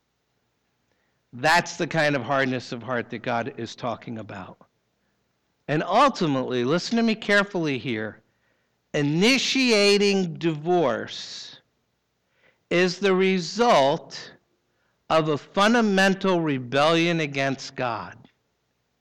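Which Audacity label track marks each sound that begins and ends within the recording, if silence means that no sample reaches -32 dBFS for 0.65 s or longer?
1.360000	4.500000	sound
5.690000	8.100000	sound
8.940000	11.490000	sound
12.710000	14.230000	sound
15.100000	18.120000	sound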